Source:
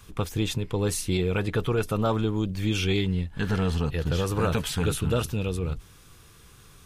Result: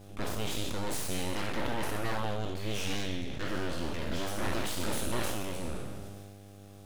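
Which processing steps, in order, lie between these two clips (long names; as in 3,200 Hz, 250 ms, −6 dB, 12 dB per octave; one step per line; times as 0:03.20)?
peak hold with a decay on every bin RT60 1.32 s
full-wave rectification
hum with harmonics 100 Hz, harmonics 8, −43 dBFS −5 dB per octave
level that may fall only so fast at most 26 dB per second
level −8 dB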